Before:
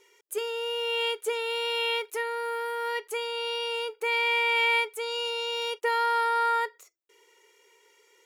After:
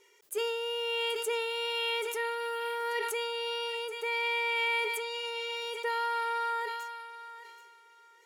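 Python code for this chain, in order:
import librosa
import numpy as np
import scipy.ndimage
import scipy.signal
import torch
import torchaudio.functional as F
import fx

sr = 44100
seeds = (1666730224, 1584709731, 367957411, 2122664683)

y = fx.rider(x, sr, range_db=4, speed_s=2.0)
y = fx.echo_thinned(y, sr, ms=778, feedback_pct=27, hz=790.0, wet_db=-12.5)
y = fx.sustainer(y, sr, db_per_s=26.0)
y = F.gain(torch.from_numpy(y), -5.5).numpy()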